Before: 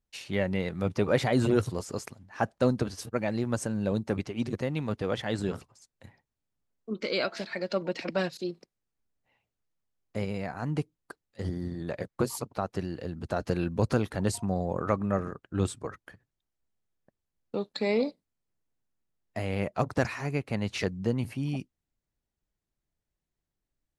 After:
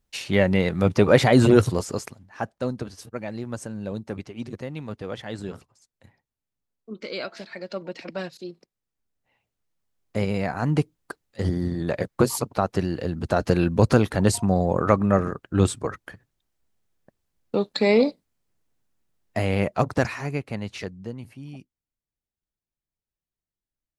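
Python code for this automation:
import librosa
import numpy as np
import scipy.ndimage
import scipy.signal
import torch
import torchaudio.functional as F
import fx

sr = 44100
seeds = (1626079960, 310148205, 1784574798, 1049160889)

y = fx.gain(x, sr, db=fx.line((1.74, 9.0), (2.55, -3.0), (8.5, -3.0), (10.42, 8.5), (19.42, 8.5), (20.37, 2.0), (21.21, -8.0)))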